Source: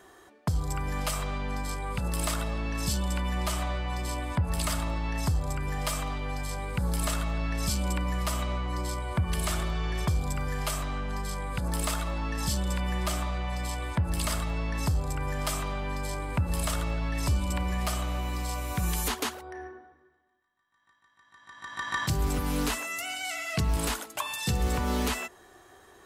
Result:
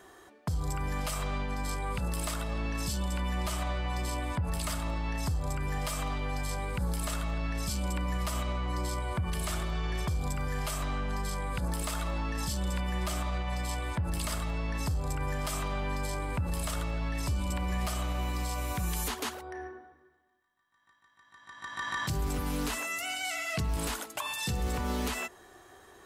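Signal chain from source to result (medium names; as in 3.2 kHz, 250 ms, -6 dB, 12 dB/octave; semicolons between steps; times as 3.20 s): peak limiter -24 dBFS, peak gain reduction 5.5 dB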